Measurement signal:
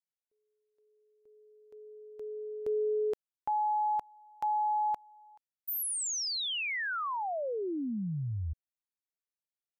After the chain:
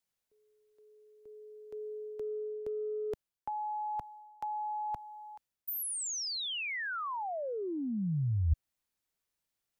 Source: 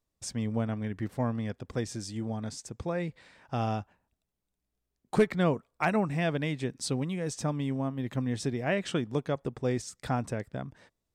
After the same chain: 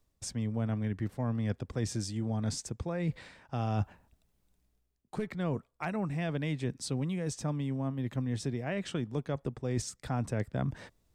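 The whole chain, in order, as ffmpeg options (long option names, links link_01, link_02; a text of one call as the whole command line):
ffmpeg -i in.wav -filter_complex "[0:a]areverse,acompressor=threshold=-43dB:ratio=5:attack=68:release=710:knee=6:detection=peak,areverse,lowshelf=frequency=150:gain=6.5,acrossover=split=170[link_01][link_02];[link_02]acompressor=threshold=-47dB:ratio=6:attack=43:release=30:knee=2.83:detection=peak[link_03];[link_01][link_03]amix=inputs=2:normalize=0,volume=8.5dB" out.wav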